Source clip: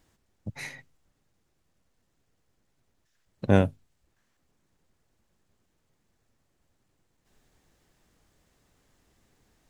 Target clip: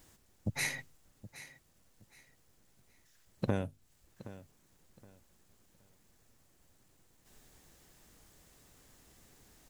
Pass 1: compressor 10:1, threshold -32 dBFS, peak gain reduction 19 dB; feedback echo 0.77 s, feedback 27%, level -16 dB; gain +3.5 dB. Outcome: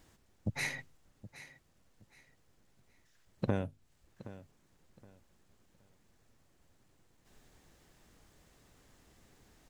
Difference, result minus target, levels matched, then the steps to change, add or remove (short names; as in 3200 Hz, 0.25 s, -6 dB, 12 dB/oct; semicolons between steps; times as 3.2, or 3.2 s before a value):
8000 Hz band -5.5 dB
add after compressor: high shelf 6500 Hz +10.5 dB